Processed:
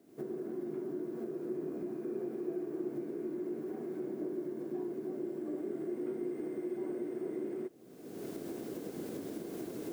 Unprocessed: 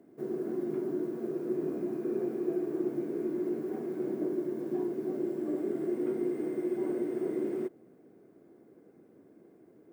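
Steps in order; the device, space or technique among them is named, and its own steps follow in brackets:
cheap recorder with automatic gain (white noise bed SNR 39 dB; camcorder AGC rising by 39 dB per second)
level −6 dB

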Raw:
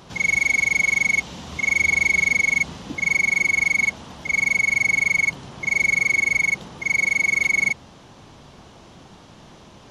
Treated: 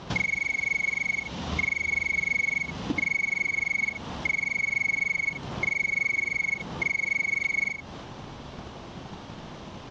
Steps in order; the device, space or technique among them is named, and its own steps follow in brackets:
drum-bus smash (transient designer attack +8 dB, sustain +4 dB; downward compressor 6 to 1, threshold −27 dBFS, peak gain reduction 16 dB; soft clipping −19 dBFS, distortion −23 dB)
Bessel low-pass filter 4,700 Hz, order 6
0:01.27–0:01.72: low-pass filter 7,700 Hz 24 dB per octave
single-tap delay 79 ms −9.5 dB
level +3.5 dB

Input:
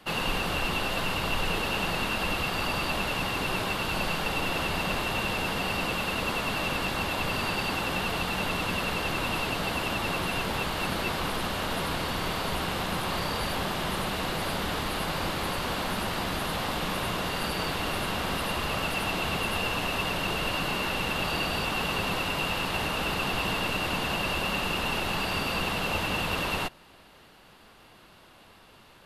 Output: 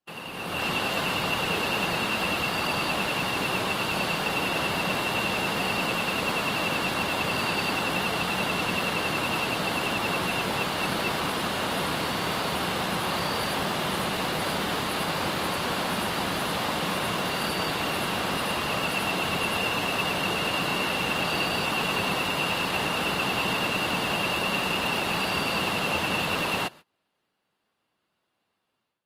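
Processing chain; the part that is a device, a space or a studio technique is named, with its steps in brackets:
video call (high-pass filter 120 Hz 12 dB per octave; automatic gain control gain up to 12 dB; noise gate −34 dBFS, range −26 dB; level −9 dB; Opus 32 kbit/s 48,000 Hz)

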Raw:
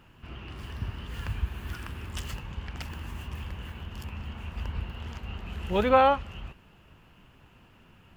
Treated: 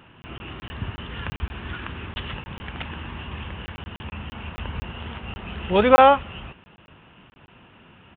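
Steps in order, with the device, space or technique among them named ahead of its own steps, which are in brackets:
call with lost packets (high-pass filter 140 Hz 6 dB per octave; downsampling to 8,000 Hz; dropped packets of 20 ms random)
level +8 dB

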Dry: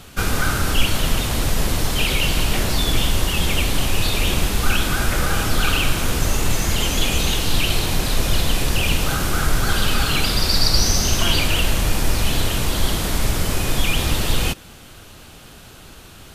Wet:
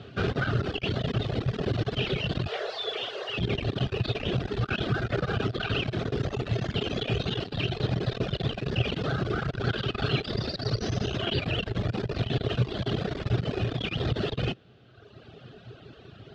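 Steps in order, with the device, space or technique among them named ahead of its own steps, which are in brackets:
0:02.48–0:03.38: Butterworth high-pass 420 Hz 48 dB per octave
guitar amplifier (tube saturation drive 18 dB, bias 0.5; bass and treble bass +4 dB, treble −3 dB; loudspeaker in its box 110–4,000 Hz, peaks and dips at 120 Hz +10 dB, 410 Hz +10 dB, 660 Hz +5 dB, 950 Hz −9 dB, 2,200 Hz −6 dB)
reverb reduction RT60 1.6 s
level −1.5 dB

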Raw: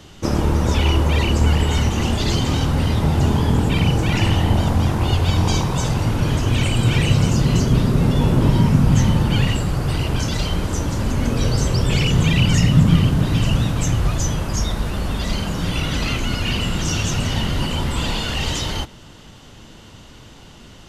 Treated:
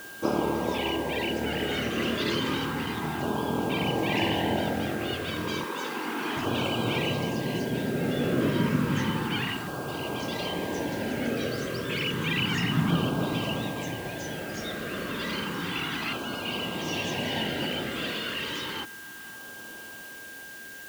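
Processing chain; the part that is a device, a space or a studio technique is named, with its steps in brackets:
shortwave radio (band-pass filter 310–2,900 Hz; amplitude tremolo 0.46 Hz, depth 34%; auto-filter notch saw down 0.31 Hz 510–2,100 Hz; steady tone 1,600 Hz −42 dBFS; white noise bed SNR 19 dB)
0:05.64–0:06.37: high-pass filter 240 Hz 24 dB per octave

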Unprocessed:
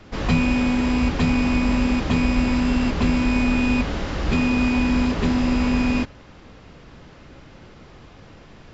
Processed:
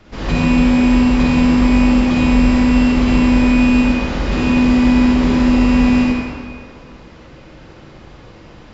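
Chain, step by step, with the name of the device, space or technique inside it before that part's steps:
stairwell (convolution reverb RT60 2.0 s, pre-delay 40 ms, DRR −6 dB)
level −1.5 dB

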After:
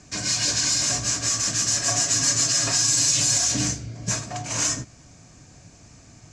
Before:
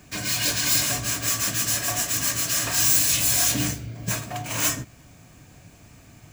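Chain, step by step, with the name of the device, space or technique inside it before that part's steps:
low-pass filter 5,300 Hz 24 dB per octave
over-bright horn tweeter (high shelf with overshoot 4,900 Hz +14 dB, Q 1.5; brickwall limiter −12.5 dBFS, peak gain reduction 6 dB)
0:01.85–0:03.38: comb filter 7.3 ms, depth 75%

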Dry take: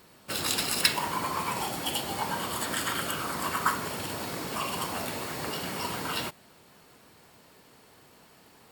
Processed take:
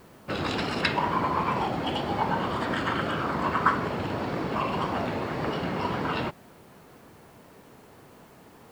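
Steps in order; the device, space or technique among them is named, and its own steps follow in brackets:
cassette deck with a dirty head (head-to-tape spacing loss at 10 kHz 35 dB; tape wow and flutter; white noise bed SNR 34 dB)
level +8.5 dB

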